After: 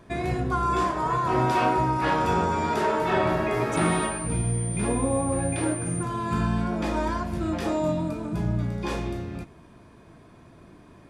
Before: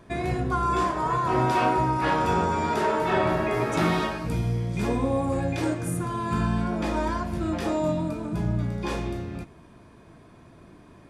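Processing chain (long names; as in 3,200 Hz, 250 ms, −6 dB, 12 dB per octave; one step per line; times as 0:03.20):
0:03.76–0:06.03: switching amplifier with a slow clock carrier 9,100 Hz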